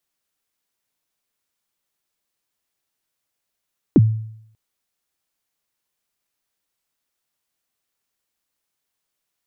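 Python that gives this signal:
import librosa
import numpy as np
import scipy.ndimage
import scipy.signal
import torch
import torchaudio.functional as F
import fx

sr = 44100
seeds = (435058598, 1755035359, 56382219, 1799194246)

y = fx.drum_kick(sr, seeds[0], length_s=0.59, level_db=-5.5, start_hz=380.0, end_hz=110.0, sweep_ms=37.0, decay_s=0.71, click=False)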